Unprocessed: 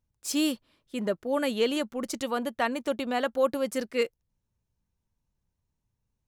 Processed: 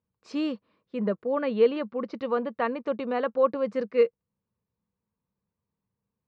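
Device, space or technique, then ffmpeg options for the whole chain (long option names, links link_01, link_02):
guitar cabinet: -filter_complex "[0:a]asplit=3[link_01][link_02][link_03];[link_01]afade=type=out:start_time=1.15:duration=0.02[link_04];[link_02]lowpass=frequency=5100:width=0.5412,lowpass=frequency=5100:width=1.3066,afade=type=in:start_time=1.15:duration=0.02,afade=type=out:start_time=2.78:duration=0.02[link_05];[link_03]afade=type=in:start_time=2.78:duration=0.02[link_06];[link_04][link_05][link_06]amix=inputs=3:normalize=0,highpass=96,equalizer=frequency=200:width_type=q:width=4:gain=9,equalizer=frequency=470:width_type=q:width=4:gain=10,equalizer=frequency=1100:width_type=q:width=4:gain=8,equalizer=frequency=3300:width_type=q:width=4:gain=-9,lowpass=frequency=3900:width=0.5412,lowpass=frequency=3900:width=1.3066,volume=-3.5dB"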